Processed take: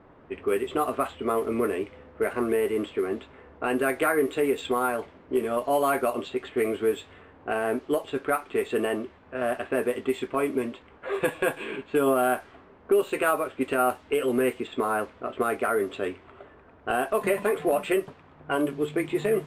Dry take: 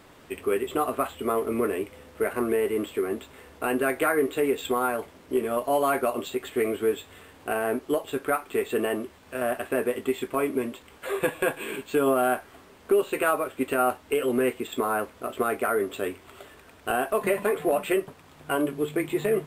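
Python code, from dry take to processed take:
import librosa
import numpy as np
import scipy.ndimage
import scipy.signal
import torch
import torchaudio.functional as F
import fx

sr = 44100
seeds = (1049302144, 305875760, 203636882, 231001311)

y = fx.env_lowpass(x, sr, base_hz=1200.0, full_db=-20.0)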